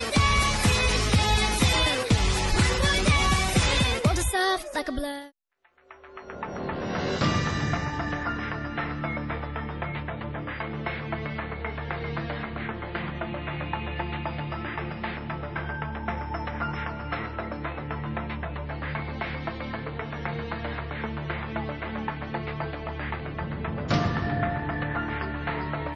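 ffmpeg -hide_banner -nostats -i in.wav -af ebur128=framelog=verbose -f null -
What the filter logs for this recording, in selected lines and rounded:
Integrated loudness:
  I:         -27.9 LUFS
  Threshold: -38.1 LUFS
Loudness range:
  LRA:        10.3 LU
  Threshold: -48.8 LUFS
  LRA low:   -32.8 LUFS
  LRA high:  -22.5 LUFS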